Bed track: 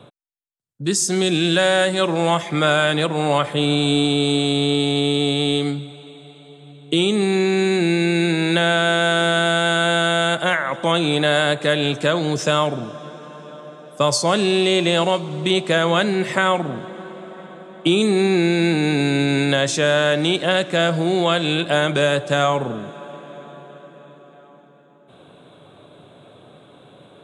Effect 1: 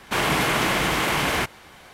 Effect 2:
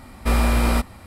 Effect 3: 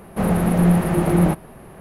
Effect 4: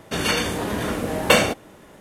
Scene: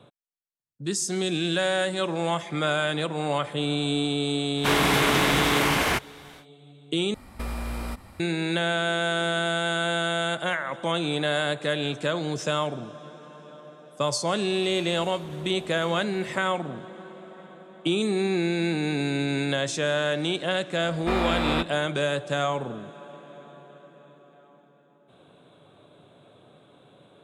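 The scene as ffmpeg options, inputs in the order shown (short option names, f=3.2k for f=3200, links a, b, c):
-filter_complex "[2:a]asplit=2[a][b];[0:a]volume=-8dB[c];[a]acompressor=threshold=-23dB:ratio=6:attack=3.2:release=140:knee=1:detection=peak[d];[4:a]acompressor=threshold=-43dB:ratio=6:attack=3.2:release=140:knee=1:detection=peak[e];[b]acrossover=split=190 4000:gain=0.224 1 0.1[f][g][h];[f][g][h]amix=inputs=3:normalize=0[i];[c]asplit=2[j][k];[j]atrim=end=7.144[l];[d]atrim=end=1.06,asetpts=PTS-STARTPTS,volume=-5dB[m];[k]atrim=start=8.196[n];[1:a]atrim=end=1.93,asetpts=PTS-STARTPTS,volume=-0.5dB,afade=t=in:d=0.1,afade=t=out:st=1.83:d=0.1,adelay=199773S[o];[e]atrim=end=2,asetpts=PTS-STARTPTS,volume=-3.5dB,afade=t=in:d=0.004:c=hsin,afade=t=out:st=1.996:d=0.004:c=hsin,adelay=14520[p];[i]atrim=end=1.06,asetpts=PTS-STARTPTS,volume=-2dB,afade=t=in:d=0.004:c=hsin,afade=t=out:st=1.056:d=0.004:c=hsin,adelay=20810[q];[l][m]acrossfade=d=0.004:c1=hsin:c2=hsin[r];[r][n]acrossfade=d=0.004:c1=hsin:c2=hsin[s];[s][o][p][q]amix=inputs=4:normalize=0"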